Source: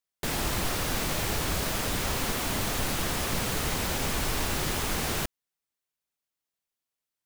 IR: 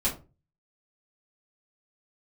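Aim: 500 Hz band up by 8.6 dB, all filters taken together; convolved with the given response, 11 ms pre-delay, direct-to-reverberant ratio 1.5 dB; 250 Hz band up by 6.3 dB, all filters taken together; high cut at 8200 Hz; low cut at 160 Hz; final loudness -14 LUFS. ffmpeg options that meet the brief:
-filter_complex "[0:a]highpass=160,lowpass=8.2k,equalizer=f=250:t=o:g=6.5,equalizer=f=500:t=o:g=9,asplit=2[a][b];[1:a]atrim=start_sample=2205,adelay=11[c];[b][c]afir=irnorm=-1:irlink=0,volume=-9.5dB[d];[a][d]amix=inputs=2:normalize=0,volume=10dB"

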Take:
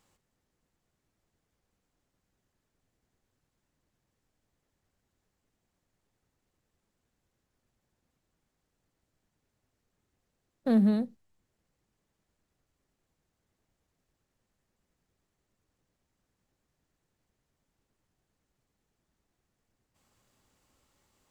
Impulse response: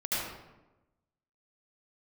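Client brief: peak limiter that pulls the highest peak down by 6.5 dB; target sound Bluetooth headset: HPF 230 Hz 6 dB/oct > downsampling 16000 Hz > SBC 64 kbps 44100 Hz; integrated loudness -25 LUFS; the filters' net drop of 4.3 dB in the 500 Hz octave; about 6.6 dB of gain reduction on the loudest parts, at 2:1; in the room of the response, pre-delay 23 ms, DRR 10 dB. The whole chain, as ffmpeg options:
-filter_complex "[0:a]equalizer=f=500:t=o:g=-4,acompressor=threshold=-33dB:ratio=2,alimiter=level_in=5.5dB:limit=-24dB:level=0:latency=1,volume=-5.5dB,asplit=2[a][b];[1:a]atrim=start_sample=2205,adelay=23[c];[b][c]afir=irnorm=-1:irlink=0,volume=-17.5dB[d];[a][d]amix=inputs=2:normalize=0,highpass=f=230:p=1,aresample=16000,aresample=44100,volume=16.5dB" -ar 44100 -c:a sbc -b:a 64k

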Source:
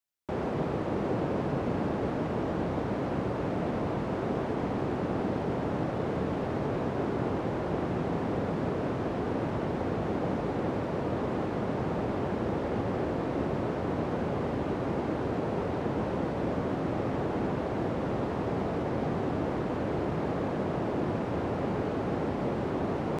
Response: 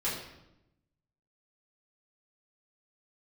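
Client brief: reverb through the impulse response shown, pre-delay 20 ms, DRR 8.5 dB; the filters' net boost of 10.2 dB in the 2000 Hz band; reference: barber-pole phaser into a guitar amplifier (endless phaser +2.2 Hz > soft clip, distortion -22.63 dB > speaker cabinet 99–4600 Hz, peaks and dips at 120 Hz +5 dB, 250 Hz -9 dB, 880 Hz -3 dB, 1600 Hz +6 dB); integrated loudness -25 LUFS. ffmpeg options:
-filter_complex "[0:a]equalizer=f=2k:t=o:g=8.5,asplit=2[a][b];[1:a]atrim=start_sample=2205,adelay=20[c];[b][c]afir=irnorm=-1:irlink=0,volume=-15dB[d];[a][d]amix=inputs=2:normalize=0,asplit=2[e][f];[f]afreqshift=2.2[g];[e][g]amix=inputs=2:normalize=1,asoftclip=threshold=-23dB,highpass=99,equalizer=f=120:t=q:w=4:g=5,equalizer=f=250:t=q:w=4:g=-9,equalizer=f=880:t=q:w=4:g=-3,equalizer=f=1.6k:t=q:w=4:g=6,lowpass=f=4.6k:w=0.5412,lowpass=f=4.6k:w=1.3066,volume=9.5dB"

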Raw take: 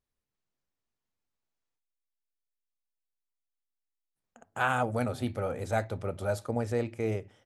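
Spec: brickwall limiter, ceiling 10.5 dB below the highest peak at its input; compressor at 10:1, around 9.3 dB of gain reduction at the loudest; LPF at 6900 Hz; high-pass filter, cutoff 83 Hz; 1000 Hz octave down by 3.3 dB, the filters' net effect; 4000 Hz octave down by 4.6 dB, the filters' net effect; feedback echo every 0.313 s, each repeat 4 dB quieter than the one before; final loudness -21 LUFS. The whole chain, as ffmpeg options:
-af "highpass=83,lowpass=6.9k,equalizer=f=1k:t=o:g=-4.5,equalizer=f=4k:t=o:g=-5.5,acompressor=threshold=-35dB:ratio=10,alimiter=level_in=9dB:limit=-24dB:level=0:latency=1,volume=-9dB,aecho=1:1:313|626|939|1252|1565|1878|2191|2504|2817:0.631|0.398|0.25|0.158|0.0994|0.0626|0.0394|0.0249|0.0157,volume=21.5dB"

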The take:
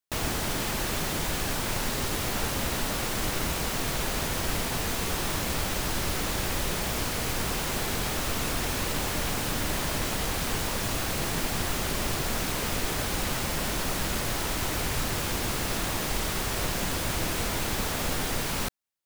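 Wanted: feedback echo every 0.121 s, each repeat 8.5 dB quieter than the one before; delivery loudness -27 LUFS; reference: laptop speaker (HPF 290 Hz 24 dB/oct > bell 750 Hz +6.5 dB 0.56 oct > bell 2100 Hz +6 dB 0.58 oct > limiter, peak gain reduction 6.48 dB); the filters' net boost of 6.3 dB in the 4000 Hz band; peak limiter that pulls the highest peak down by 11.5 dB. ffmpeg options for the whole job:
-af "equalizer=f=4k:t=o:g=7,alimiter=level_in=1.5dB:limit=-24dB:level=0:latency=1,volume=-1.5dB,highpass=f=290:w=0.5412,highpass=f=290:w=1.3066,equalizer=f=750:t=o:w=0.56:g=6.5,equalizer=f=2.1k:t=o:w=0.58:g=6,aecho=1:1:121|242|363|484:0.376|0.143|0.0543|0.0206,volume=8dB,alimiter=limit=-19dB:level=0:latency=1"

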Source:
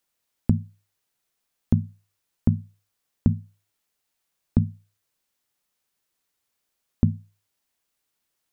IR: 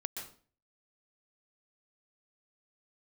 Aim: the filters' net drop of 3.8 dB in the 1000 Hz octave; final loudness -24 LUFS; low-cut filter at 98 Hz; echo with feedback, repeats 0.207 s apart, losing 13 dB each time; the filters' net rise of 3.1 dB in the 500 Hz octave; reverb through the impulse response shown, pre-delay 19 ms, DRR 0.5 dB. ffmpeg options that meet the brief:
-filter_complex "[0:a]highpass=98,equalizer=f=500:t=o:g=6,equalizer=f=1k:t=o:g=-8.5,aecho=1:1:207|414|621:0.224|0.0493|0.0108,asplit=2[a][b];[1:a]atrim=start_sample=2205,adelay=19[c];[b][c]afir=irnorm=-1:irlink=0,volume=-0.5dB[d];[a][d]amix=inputs=2:normalize=0,volume=1.5dB"

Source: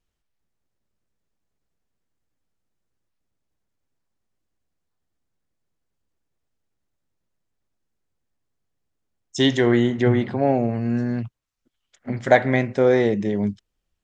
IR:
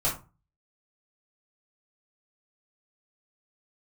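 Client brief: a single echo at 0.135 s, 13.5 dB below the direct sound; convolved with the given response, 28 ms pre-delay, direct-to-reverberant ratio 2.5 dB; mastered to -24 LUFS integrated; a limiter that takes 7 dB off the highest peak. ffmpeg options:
-filter_complex "[0:a]alimiter=limit=-9.5dB:level=0:latency=1,aecho=1:1:135:0.211,asplit=2[a][b];[1:a]atrim=start_sample=2205,adelay=28[c];[b][c]afir=irnorm=-1:irlink=0,volume=-11.5dB[d];[a][d]amix=inputs=2:normalize=0,volume=-4dB"

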